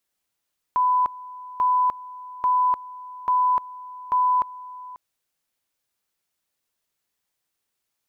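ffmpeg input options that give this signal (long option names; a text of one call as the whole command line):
ffmpeg -f lavfi -i "aevalsrc='pow(10,(-16.5-19*gte(mod(t,0.84),0.3))/20)*sin(2*PI*1000*t)':duration=4.2:sample_rate=44100" out.wav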